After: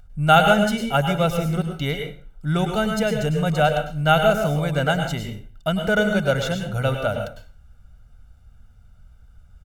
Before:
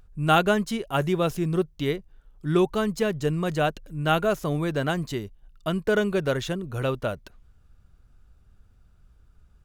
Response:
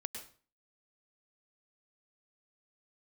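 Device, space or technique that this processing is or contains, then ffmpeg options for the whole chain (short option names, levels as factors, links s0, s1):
microphone above a desk: -filter_complex "[0:a]aecho=1:1:1.4:0.76[s0];[1:a]atrim=start_sample=2205[s1];[s0][s1]afir=irnorm=-1:irlink=0,volume=1.68"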